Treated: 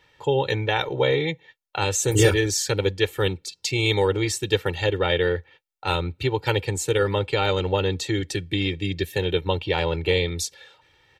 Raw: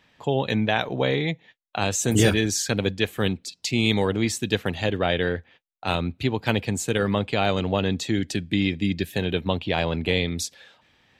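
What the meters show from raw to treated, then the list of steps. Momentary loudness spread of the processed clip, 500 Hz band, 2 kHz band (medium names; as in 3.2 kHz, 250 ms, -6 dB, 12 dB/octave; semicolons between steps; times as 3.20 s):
6 LU, +3.0 dB, +0.5 dB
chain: comb 2.2 ms, depth 97%; trim -1.5 dB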